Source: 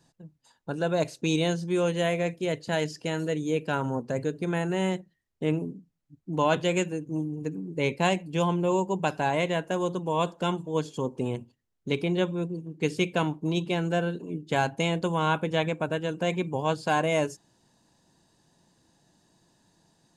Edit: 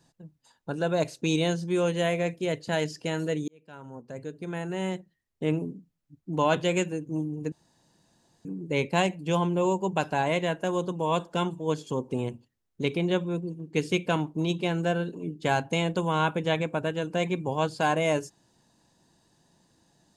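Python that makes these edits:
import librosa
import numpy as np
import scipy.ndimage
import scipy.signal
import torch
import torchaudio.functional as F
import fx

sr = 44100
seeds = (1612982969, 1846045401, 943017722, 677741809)

y = fx.edit(x, sr, fx.fade_in_span(start_s=3.48, length_s=2.06),
    fx.insert_room_tone(at_s=7.52, length_s=0.93), tone=tone)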